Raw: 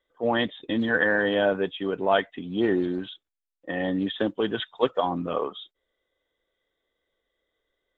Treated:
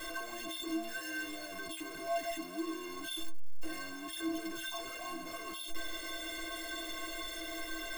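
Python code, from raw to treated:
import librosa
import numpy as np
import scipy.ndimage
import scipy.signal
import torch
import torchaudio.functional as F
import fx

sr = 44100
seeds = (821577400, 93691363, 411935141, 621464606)

y = np.sign(x) * np.sqrt(np.mean(np.square(x)))
y = fx.stiff_resonator(y, sr, f0_hz=320.0, decay_s=0.27, stiffness=0.03)
y = y * 10.0 ** (1.5 / 20.0)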